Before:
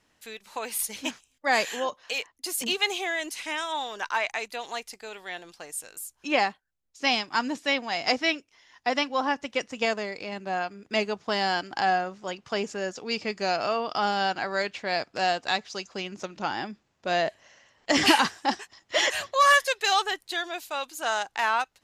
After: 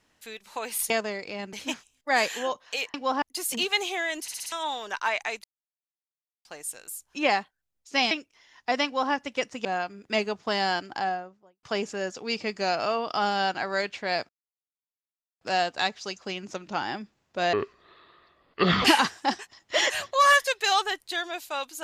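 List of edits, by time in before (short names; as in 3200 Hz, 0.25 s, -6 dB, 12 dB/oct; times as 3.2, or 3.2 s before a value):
3.31 stutter in place 0.06 s, 5 plays
4.53–5.54 mute
7.2–8.29 cut
9.03–9.31 copy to 2.31
9.83–10.46 move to 0.9
11.5–12.44 studio fade out
15.1 insert silence 1.12 s
17.22–18.05 speed 63%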